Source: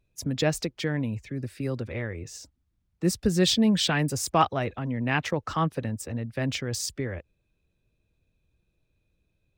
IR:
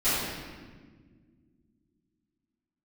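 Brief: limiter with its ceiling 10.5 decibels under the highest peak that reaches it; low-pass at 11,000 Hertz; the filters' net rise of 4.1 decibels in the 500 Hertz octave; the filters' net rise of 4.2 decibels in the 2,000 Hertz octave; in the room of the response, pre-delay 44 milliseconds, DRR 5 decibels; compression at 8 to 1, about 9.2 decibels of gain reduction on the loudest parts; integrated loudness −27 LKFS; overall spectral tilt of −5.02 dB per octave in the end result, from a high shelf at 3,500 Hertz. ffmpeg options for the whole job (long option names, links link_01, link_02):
-filter_complex "[0:a]lowpass=11000,equalizer=frequency=500:width_type=o:gain=5,equalizer=frequency=2000:width_type=o:gain=7,highshelf=frequency=3500:gain=-7.5,acompressor=threshold=-25dB:ratio=8,alimiter=limit=-22.5dB:level=0:latency=1,asplit=2[link_01][link_02];[1:a]atrim=start_sample=2205,adelay=44[link_03];[link_02][link_03]afir=irnorm=-1:irlink=0,volume=-18.5dB[link_04];[link_01][link_04]amix=inputs=2:normalize=0,volume=4.5dB"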